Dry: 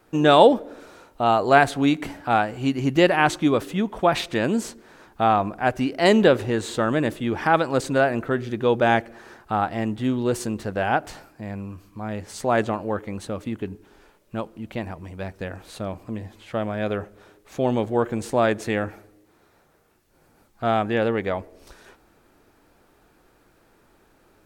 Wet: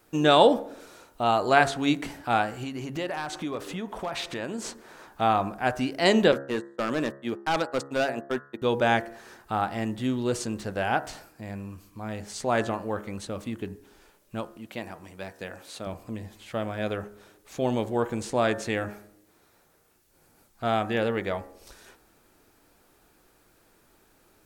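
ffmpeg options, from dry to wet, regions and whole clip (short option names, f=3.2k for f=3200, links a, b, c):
-filter_complex "[0:a]asettb=1/sr,asplit=3[a][b][c];[a]atrim=end=2.634[d];[b]atrim=start=2.63:end=5.21,asetpts=PTS-STARTPTS,afade=t=in:d=0.004:c=qsin,afade=t=out:st=2.576:d=0.004:c=qsin,equalizer=f=900:t=o:w=2.5:g=6.5,acompressor=threshold=-28dB:ratio=3:attack=3.2:release=140:knee=1:detection=peak,volume=20dB,asoftclip=hard,volume=-20dB[e];[c]atrim=start=5.206[f];[d][e]acrossfade=d=0.004:c1=hsin:c2=qsin[g];[g][f]acrossfade=d=0.004:c1=qsin:c2=hsin,asettb=1/sr,asplit=3[h][i][j];[h]atrim=end=6.324[k];[i]atrim=start=6.32:end=8.62,asetpts=PTS-STARTPTS,afade=t=in:d=0.004:c=qsin,afade=t=out:st=2.296:d=0.004:c=qsin,agate=range=-50dB:threshold=-25dB:ratio=16:release=100:detection=peak,highpass=160,asoftclip=type=hard:threshold=-16.5dB[l];[j]atrim=start=8.616[m];[k][l]acrossfade=d=0.004:c1=hsin:c2=qsin[n];[n][m]acrossfade=d=0.004:c1=qsin:c2=hsin,asettb=1/sr,asplit=3[o][p][q];[o]atrim=end=14.574[r];[p]atrim=start=14.57:end=15.87,asetpts=PTS-STARTPTS,afade=t=in:d=0.004:c=qsin,afade=t=out:st=1.296:d=0.004:c=qsin,highpass=86,lowshelf=f=160:g=-9.5[s];[q]atrim=start=15.866[t];[r][s]acrossfade=d=0.004:c1=hsin:c2=qsin[u];[u][t]acrossfade=d=0.004:c1=qsin:c2=hsin,acrossover=split=7900[v][w];[w]acompressor=threshold=-57dB:ratio=4:attack=1:release=60[x];[v][x]amix=inputs=2:normalize=0,highshelf=f=4.2k:g=9.5,bandreject=f=68.8:t=h:w=4,bandreject=f=137.6:t=h:w=4,bandreject=f=206.4:t=h:w=4,bandreject=f=275.2:t=h:w=4,bandreject=f=344:t=h:w=4,bandreject=f=412.8:t=h:w=4,bandreject=f=481.6:t=h:w=4,bandreject=f=550.4:t=h:w=4,bandreject=f=619.2:t=h:w=4,bandreject=f=688:t=h:w=4,bandreject=f=756.8:t=h:w=4,bandreject=f=825.6:t=h:w=4,bandreject=f=894.4:t=h:w=4,bandreject=f=963.2:t=h:w=4,bandreject=f=1.032k:t=h:w=4,bandreject=f=1.1008k:t=h:w=4,bandreject=f=1.1696k:t=h:w=4,bandreject=f=1.2384k:t=h:w=4,bandreject=f=1.3072k:t=h:w=4,bandreject=f=1.376k:t=h:w=4,bandreject=f=1.4448k:t=h:w=4,bandreject=f=1.5136k:t=h:w=4,bandreject=f=1.5824k:t=h:w=4,bandreject=f=1.6512k:t=h:w=4,bandreject=f=1.72k:t=h:w=4,bandreject=f=1.7888k:t=h:w=4,bandreject=f=1.8576k:t=h:w=4,bandreject=f=1.9264k:t=h:w=4,volume=-4dB"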